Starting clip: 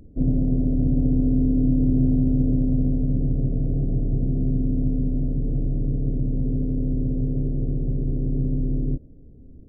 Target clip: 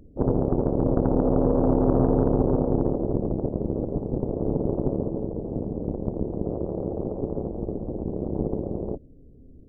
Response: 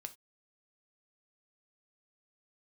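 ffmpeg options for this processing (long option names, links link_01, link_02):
-af "aeval=exprs='0.355*(cos(1*acos(clip(val(0)/0.355,-1,1)))-cos(1*PI/2))+0.0891*(cos(3*acos(clip(val(0)/0.355,-1,1)))-cos(3*PI/2))+0.0447*(cos(7*acos(clip(val(0)/0.355,-1,1)))-cos(7*PI/2))':channel_layout=same,equalizer=frequency=460:width_type=o:width=1.3:gain=5"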